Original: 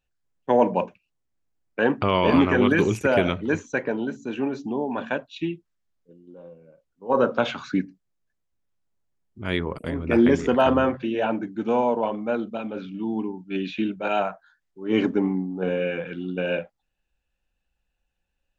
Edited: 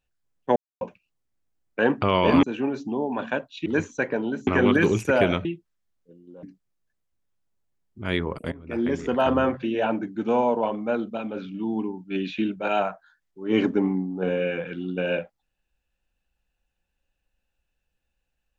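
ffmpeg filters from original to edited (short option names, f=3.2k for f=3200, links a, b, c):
-filter_complex "[0:a]asplit=9[a][b][c][d][e][f][g][h][i];[a]atrim=end=0.56,asetpts=PTS-STARTPTS,afade=t=out:st=0.556:d=0.004:c=hsin[j];[b]atrim=start=0.56:end=0.81,asetpts=PTS-STARTPTS,volume=0[k];[c]atrim=start=0.81:end=2.432,asetpts=PTS-STARTPTS,afade=t=in:d=0.004:c=hsin[l];[d]atrim=start=4.218:end=5.452[m];[e]atrim=start=3.408:end=4.222[n];[f]atrim=start=2.428:end=3.412[o];[g]atrim=start=5.448:end=6.432[p];[h]atrim=start=7.828:end=9.92,asetpts=PTS-STARTPTS,afade=t=out:st=2.088:d=0.004:c=hsin:silence=0.133352[q];[i]atrim=start=9.92,asetpts=PTS-STARTPTS,afade=t=in:d=1.04:silence=0.133352[r];[j][k][l]concat=n=3:v=0:a=1[s];[s][m]acrossfade=d=0.004:c1=hsin:c2=hsin[t];[t][n]acrossfade=d=0.004:c1=hsin:c2=hsin[u];[u][o]acrossfade=d=0.004:c1=hsin:c2=hsin[v];[v][p]acrossfade=d=0.004:c1=hsin:c2=hsin[w];[q][r]concat=n=2:v=0:a=1[x];[w][x]acrossfade=d=0.004:c1=hsin:c2=hsin"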